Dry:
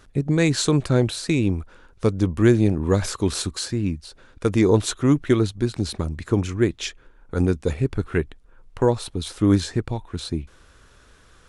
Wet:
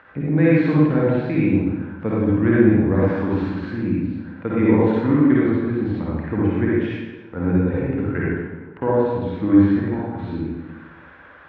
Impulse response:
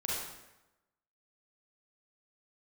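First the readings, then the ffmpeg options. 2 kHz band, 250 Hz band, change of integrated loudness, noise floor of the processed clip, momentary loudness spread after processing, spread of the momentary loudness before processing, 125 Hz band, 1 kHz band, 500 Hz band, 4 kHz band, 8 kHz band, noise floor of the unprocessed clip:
+3.0 dB, +5.0 dB, +2.5 dB, -44 dBFS, 12 LU, 11 LU, +0.5 dB, +3.5 dB, +2.0 dB, under -15 dB, under -35 dB, -53 dBFS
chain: -filter_complex "[0:a]acrossover=split=460[a][b];[b]acompressor=mode=upward:threshold=-37dB:ratio=2.5[c];[a][c]amix=inputs=2:normalize=0,highpass=130,equalizer=f=130:t=q:w=4:g=-6,equalizer=f=390:t=q:w=4:g=-10,equalizer=f=660:t=q:w=4:g=-4,equalizer=f=1.2k:t=q:w=4:g=-7,lowpass=f=2k:w=0.5412,lowpass=f=2k:w=1.3066[d];[1:a]atrim=start_sample=2205,asetrate=33075,aresample=44100[e];[d][e]afir=irnorm=-1:irlink=0"

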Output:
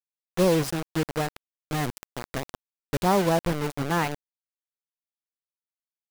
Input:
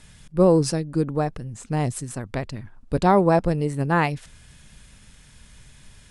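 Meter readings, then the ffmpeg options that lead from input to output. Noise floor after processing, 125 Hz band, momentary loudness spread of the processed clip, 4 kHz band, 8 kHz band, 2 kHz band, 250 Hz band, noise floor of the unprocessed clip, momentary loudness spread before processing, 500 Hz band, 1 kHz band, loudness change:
under -85 dBFS, -6.0 dB, 13 LU, +3.0 dB, -1.5 dB, -2.0 dB, -5.0 dB, -51 dBFS, 14 LU, -5.0 dB, -4.0 dB, -4.5 dB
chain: -af "acrusher=bits=3:mix=0:aa=0.000001,adynamicequalizer=threshold=0.0141:dfrequency=2800:dqfactor=0.7:tfrequency=2800:tqfactor=0.7:attack=5:release=100:ratio=0.375:range=2.5:mode=cutabove:tftype=highshelf,volume=-5dB"

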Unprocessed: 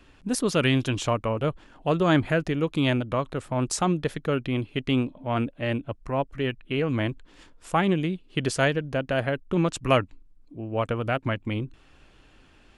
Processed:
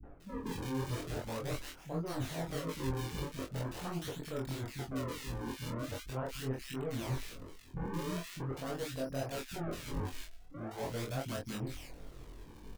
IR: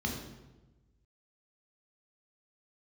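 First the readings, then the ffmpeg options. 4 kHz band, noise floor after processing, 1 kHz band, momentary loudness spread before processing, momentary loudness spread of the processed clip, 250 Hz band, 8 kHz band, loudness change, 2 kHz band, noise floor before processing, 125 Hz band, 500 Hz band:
-12.5 dB, -53 dBFS, -14.5 dB, 8 LU, 9 LU, -14.0 dB, -10.5 dB, -13.5 dB, -16.0 dB, -56 dBFS, -11.5 dB, -14.0 dB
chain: -filter_complex "[0:a]aemphasis=mode=reproduction:type=50fm,areverse,acompressor=threshold=-37dB:ratio=5,areverse,acrusher=samples=38:mix=1:aa=0.000001:lfo=1:lforange=60.8:lforate=0.42,asoftclip=type=tanh:threshold=-37.5dB,flanger=delay=18.5:depth=7.6:speed=1.5,asplit=2[a][b];[b]adelay=23,volume=-3dB[c];[a][c]amix=inputs=2:normalize=0,acrossover=split=240|1700[d][e][f];[e]adelay=30[g];[f]adelay=200[h];[d][g][h]amix=inputs=3:normalize=0,volume=7dB"

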